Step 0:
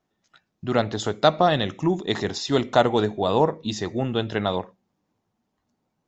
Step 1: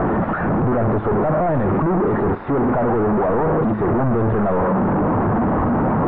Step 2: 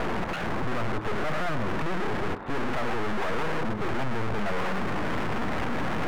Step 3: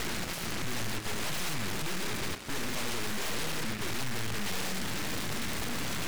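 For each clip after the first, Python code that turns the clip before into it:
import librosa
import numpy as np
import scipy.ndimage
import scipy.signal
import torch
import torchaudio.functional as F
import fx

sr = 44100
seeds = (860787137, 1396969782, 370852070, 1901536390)

y1 = np.sign(x) * np.sqrt(np.mean(np.square(x)))
y1 = scipy.signal.sosfilt(scipy.signal.cheby2(4, 70, 5700.0, 'lowpass', fs=sr, output='sos'), y1)
y1 = y1 * 10.0 ** (8.0 / 20.0)
y2 = np.minimum(y1, 2.0 * 10.0 ** (-25.5 / 20.0) - y1)
y2 = y2 * 10.0 ** (-6.0 / 20.0)
y3 = fx.noise_mod_delay(y2, sr, seeds[0], noise_hz=1600.0, depth_ms=0.4)
y3 = y3 * 10.0 ** (-5.5 / 20.0)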